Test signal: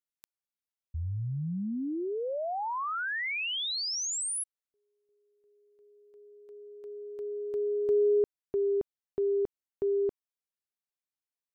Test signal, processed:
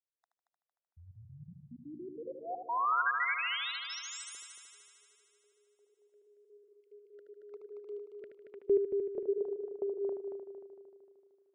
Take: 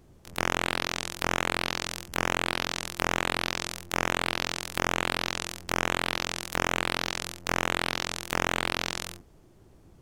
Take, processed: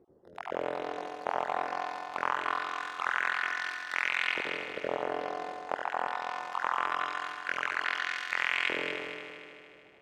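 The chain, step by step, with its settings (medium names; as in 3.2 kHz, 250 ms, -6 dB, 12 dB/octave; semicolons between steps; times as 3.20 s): random holes in the spectrogram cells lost 35%; LFO band-pass saw up 0.23 Hz 430–2400 Hz; multi-head delay 76 ms, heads first and third, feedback 64%, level -7 dB; trim +4 dB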